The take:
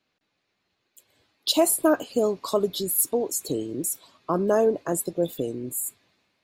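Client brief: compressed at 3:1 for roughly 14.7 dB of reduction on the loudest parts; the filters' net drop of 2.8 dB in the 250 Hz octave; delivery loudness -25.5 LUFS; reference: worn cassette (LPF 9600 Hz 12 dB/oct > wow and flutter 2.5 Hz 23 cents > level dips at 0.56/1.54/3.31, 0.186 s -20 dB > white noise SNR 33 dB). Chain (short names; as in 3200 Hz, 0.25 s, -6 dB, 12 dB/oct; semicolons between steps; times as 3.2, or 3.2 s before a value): bell 250 Hz -4 dB; compressor 3:1, threshold -37 dBFS; LPF 9600 Hz 12 dB/oct; wow and flutter 2.5 Hz 23 cents; level dips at 0.56/1.54/3.31, 0.186 s -20 dB; white noise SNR 33 dB; gain +13.5 dB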